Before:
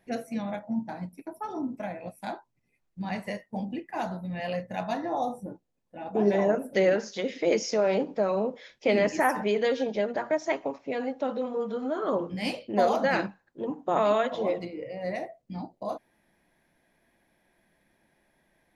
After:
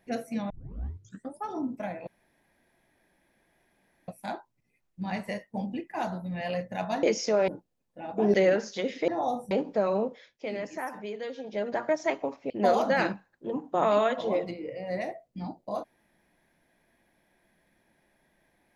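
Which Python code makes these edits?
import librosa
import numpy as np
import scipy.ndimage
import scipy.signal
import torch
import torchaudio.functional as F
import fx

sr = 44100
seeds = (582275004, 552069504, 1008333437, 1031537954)

y = fx.edit(x, sr, fx.tape_start(start_s=0.5, length_s=0.94),
    fx.insert_room_tone(at_s=2.07, length_s=2.01),
    fx.swap(start_s=5.02, length_s=0.43, other_s=7.48, other_length_s=0.45),
    fx.cut(start_s=6.31, length_s=0.43),
    fx.fade_down_up(start_s=8.45, length_s=1.7, db=-11.0, fade_s=0.29),
    fx.cut(start_s=10.92, length_s=1.72), tone=tone)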